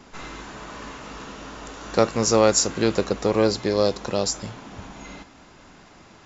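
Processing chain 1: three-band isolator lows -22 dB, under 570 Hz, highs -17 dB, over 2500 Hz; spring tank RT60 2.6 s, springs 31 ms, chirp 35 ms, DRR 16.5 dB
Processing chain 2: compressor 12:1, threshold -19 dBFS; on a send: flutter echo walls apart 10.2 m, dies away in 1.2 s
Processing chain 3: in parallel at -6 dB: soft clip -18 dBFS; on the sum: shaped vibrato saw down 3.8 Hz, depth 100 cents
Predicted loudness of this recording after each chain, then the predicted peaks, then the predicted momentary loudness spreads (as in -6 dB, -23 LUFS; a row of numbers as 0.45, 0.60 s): -30.5, -25.0, -19.5 LUFS; -9.5, -6.0, -3.0 dBFS; 20, 15, 20 LU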